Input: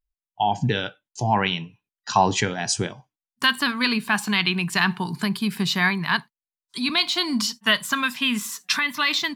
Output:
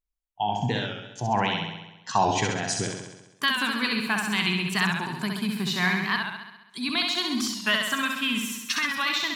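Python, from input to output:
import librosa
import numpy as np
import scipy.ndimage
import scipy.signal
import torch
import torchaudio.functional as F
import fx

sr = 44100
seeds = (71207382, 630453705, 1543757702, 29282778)

p1 = fx.peak_eq(x, sr, hz=4800.0, db=-3.0, octaves=0.25)
p2 = p1 + fx.room_flutter(p1, sr, wall_m=11.4, rt60_s=0.99, dry=0)
p3 = fx.record_warp(p2, sr, rpm=45.0, depth_cents=100.0)
y = p3 * librosa.db_to_amplitude(-5.0)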